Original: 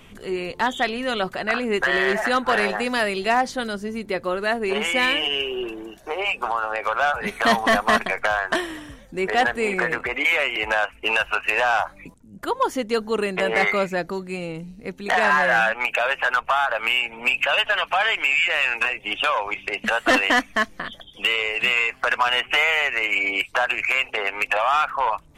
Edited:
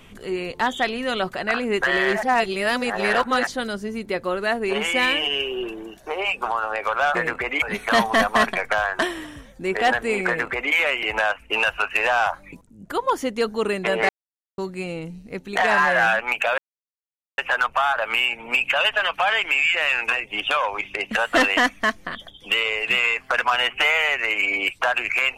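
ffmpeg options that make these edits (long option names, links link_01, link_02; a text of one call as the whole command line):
ffmpeg -i in.wav -filter_complex "[0:a]asplit=8[link_01][link_02][link_03][link_04][link_05][link_06][link_07][link_08];[link_01]atrim=end=2.232[link_09];[link_02]atrim=start=2.228:end=3.472,asetpts=PTS-STARTPTS,areverse[link_10];[link_03]atrim=start=3.468:end=7.152[link_11];[link_04]atrim=start=9.798:end=10.272[link_12];[link_05]atrim=start=7.148:end=13.62,asetpts=PTS-STARTPTS,afade=type=out:start_time=6.468:duration=0.004:curve=hsin[link_13];[link_06]atrim=start=13.62:end=14.11,asetpts=PTS-STARTPTS,volume=0[link_14];[link_07]atrim=start=14.11:end=16.11,asetpts=PTS-STARTPTS,afade=type=in:duration=0.004:curve=hsin,afade=type=out:start_time=1.996:duration=0.004:curve=hsin,apad=pad_dur=0.8[link_15];[link_08]atrim=start=16.11,asetpts=PTS-STARTPTS,afade=type=in:duration=0.004:curve=hsin[link_16];[link_09][link_10]acrossfade=duration=0.004:curve1=hsin:curve2=hsin[link_17];[link_17][link_11]acrossfade=duration=0.004:curve1=hsin:curve2=hsin[link_18];[link_18][link_12]acrossfade=duration=0.004:curve1=hsin:curve2=hsin[link_19];[link_13][link_14][link_15][link_16]concat=n=4:v=0:a=1[link_20];[link_19][link_20]acrossfade=duration=0.004:curve1=hsin:curve2=hsin" out.wav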